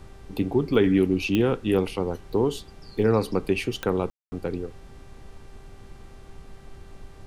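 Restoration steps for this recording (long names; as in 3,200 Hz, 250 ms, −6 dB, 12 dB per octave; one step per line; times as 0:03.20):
click removal
hum removal 392 Hz, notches 28
ambience match 0:04.10–0:04.32
noise reduction from a noise print 23 dB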